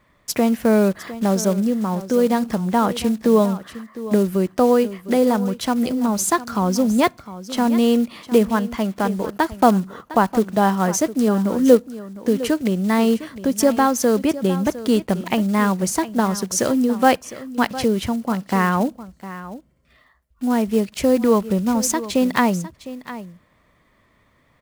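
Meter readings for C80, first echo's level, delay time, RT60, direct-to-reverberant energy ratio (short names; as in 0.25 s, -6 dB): none, -15.0 dB, 0.707 s, none, none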